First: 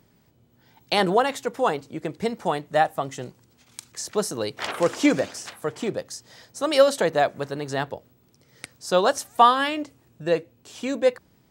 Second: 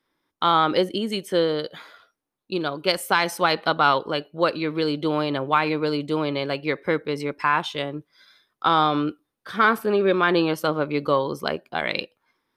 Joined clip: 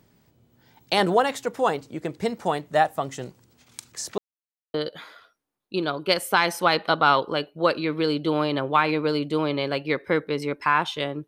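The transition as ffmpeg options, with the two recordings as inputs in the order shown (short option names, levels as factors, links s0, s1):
-filter_complex "[0:a]apad=whole_dur=11.27,atrim=end=11.27,asplit=2[s0][s1];[s0]atrim=end=4.18,asetpts=PTS-STARTPTS,afade=t=out:st=4.176:d=0.004:c=hsin[s2];[s1]atrim=start=4.18:end=4.74,asetpts=PTS-STARTPTS,volume=0[s3];[1:a]atrim=start=1.52:end=8.05,asetpts=PTS-STARTPTS,afade=t=in:d=0.004:c=hsin[s4];[s2][s3][s4]concat=n=3:v=0:a=1"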